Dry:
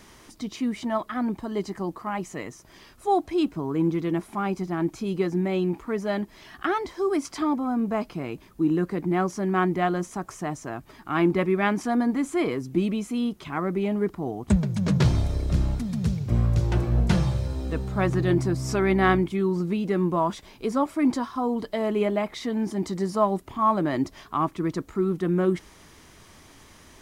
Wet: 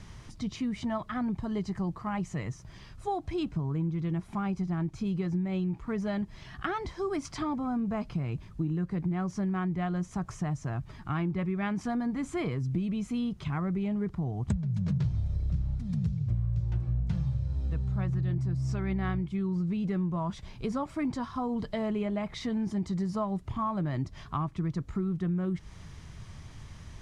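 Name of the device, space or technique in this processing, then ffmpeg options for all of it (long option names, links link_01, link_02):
jukebox: -af "lowpass=7400,lowshelf=frequency=200:width_type=q:width=1.5:gain=12.5,acompressor=threshold=-25dB:ratio=6,volume=-3dB"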